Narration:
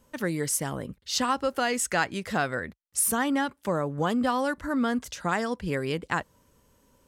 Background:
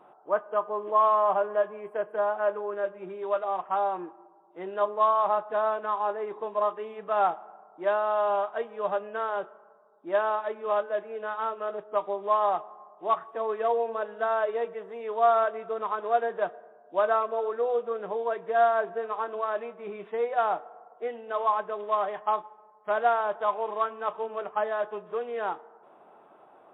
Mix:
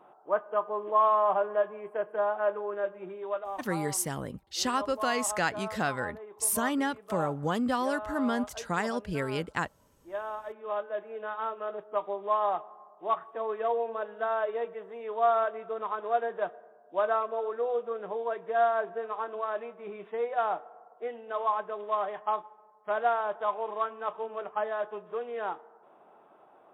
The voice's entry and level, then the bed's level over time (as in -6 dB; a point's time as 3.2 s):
3.45 s, -3.0 dB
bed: 3.04 s -1.5 dB
3.87 s -12 dB
10 s -12 dB
11.18 s -3 dB